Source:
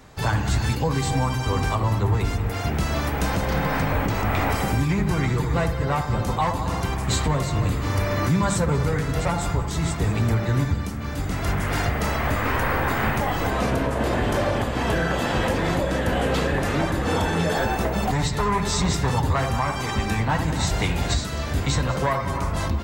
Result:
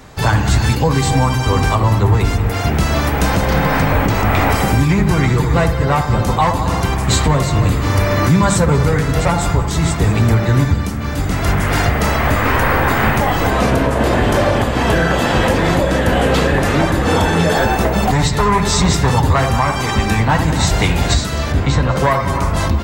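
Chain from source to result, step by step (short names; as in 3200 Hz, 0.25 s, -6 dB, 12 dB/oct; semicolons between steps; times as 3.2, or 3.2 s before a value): 21.52–21.96 LPF 2400 Hz 6 dB/oct; gain +8.5 dB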